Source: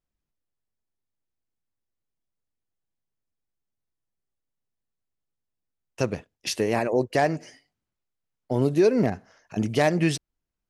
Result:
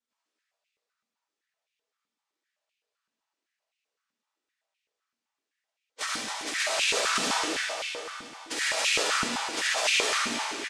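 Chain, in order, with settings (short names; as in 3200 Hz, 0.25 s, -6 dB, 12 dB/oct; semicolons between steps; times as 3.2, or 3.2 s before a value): noise vocoder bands 1; high shelf 4000 Hz -7 dB; notch 2100 Hz, Q 5.4; comb 5.6 ms, depth 98%; compressor 4:1, threshold -34 dBFS, peak gain reduction 17 dB; spectral gate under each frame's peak -10 dB weak; air absorption 51 m; feedback echo 0.275 s, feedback 53%, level -7 dB; reverb RT60 2.7 s, pre-delay 25 ms, DRR -6 dB; stepped high-pass 7.8 Hz 230–2500 Hz; gain +8.5 dB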